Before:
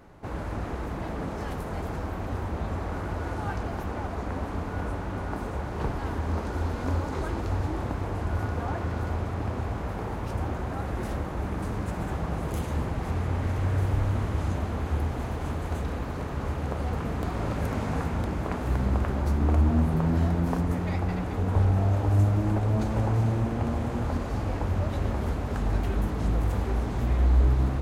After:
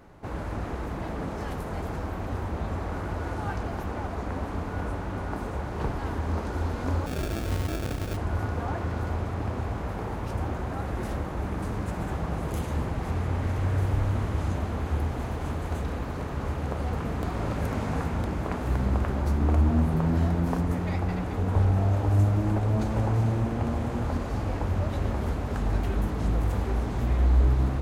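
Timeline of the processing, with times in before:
7.06–8.17 sample-rate reducer 1000 Hz

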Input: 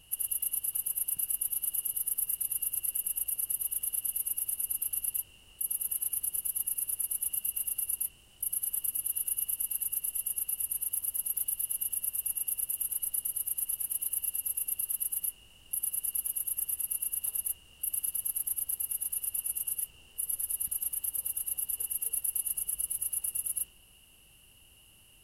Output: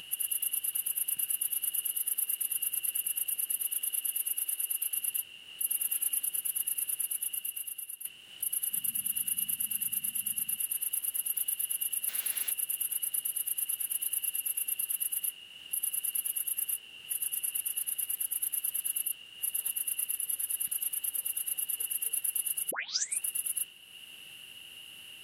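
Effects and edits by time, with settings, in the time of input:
1.83–2.52 HPF 190 Hz 24 dB/oct
3.27–4.93 HPF 110 Hz -> 380 Hz 24 dB/oct
5.63–6.23 comb 3.6 ms
6.97–8.05 fade out, to -12 dB
8.72–10.57 resonant low shelf 290 Hz +9.5 dB, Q 3
12.08–12.51 requantised 8-bit, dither triangular
16.75–20.2 reverse
22.71 tape start 0.51 s
whole clip: HPF 170 Hz 12 dB/oct; band shelf 2400 Hz +9.5 dB; upward compressor, threshold -41 dBFS

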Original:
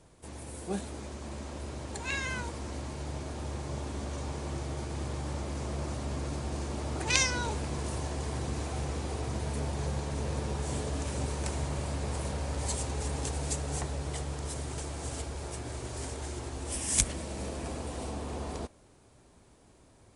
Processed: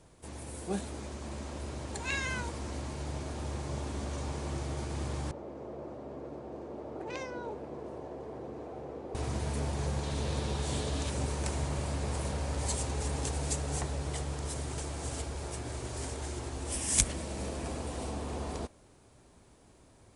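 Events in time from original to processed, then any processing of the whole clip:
5.31–9.15 band-pass 470 Hz, Q 1.4
10.03–11.1 bell 3700 Hz +7.5 dB 0.72 oct

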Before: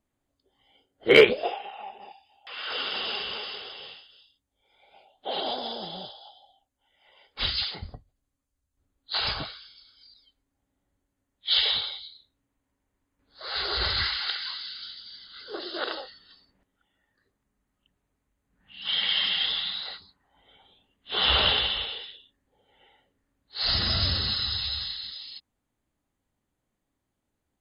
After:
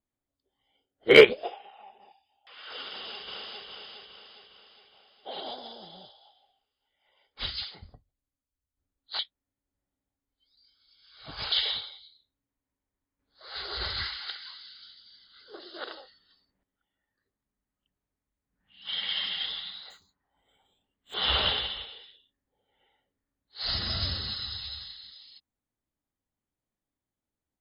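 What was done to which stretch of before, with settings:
2.86–3.65 echo throw 0.41 s, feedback 55%, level -2.5 dB
9.19–11.52 reverse
19.9–21.14 decimation joined by straight lines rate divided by 4×
whole clip: notch 2700 Hz, Q 27; upward expander 1.5:1, over -35 dBFS; gain +2 dB

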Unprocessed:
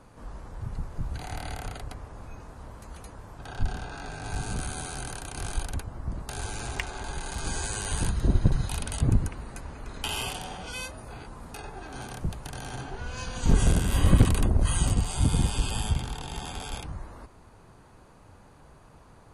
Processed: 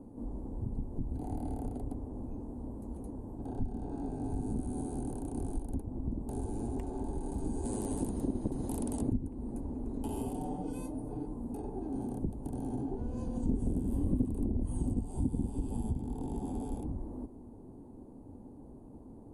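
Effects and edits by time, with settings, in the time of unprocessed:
7.65–9.12 spectral compressor 2:1
10.37–11.34 comb 6.7 ms
whole clip: EQ curve 170 Hz 0 dB, 250 Hz +14 dB, 620 Hz -4 dB, 880 Hz -5 dB, 1300 Hz -24 dB, 2200 Hz -28 dB, 5900 Hz -24 dB, 8700 Hz -11 dB; compressor 3:1, threshold -32 dBFS

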